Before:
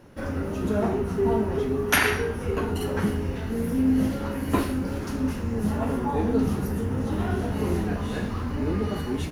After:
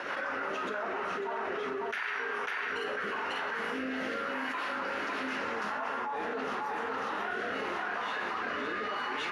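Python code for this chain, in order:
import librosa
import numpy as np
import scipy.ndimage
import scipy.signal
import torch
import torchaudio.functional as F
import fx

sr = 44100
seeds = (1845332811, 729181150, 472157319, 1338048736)

p1 = fx.ladder_bandpass(x, sr, hz=1600.0, resonance_pct=20)
p2 = p1 + fx.echo_single(p1, sr, ms=547, db=-4.0, dry=0)
p3 = fx.rotary_switch(p2, sr, hz=6.0, then_hz=0.85, switch_at_s=0.63)
y = fx.env_flatten(p3, sr, amount_pct=100)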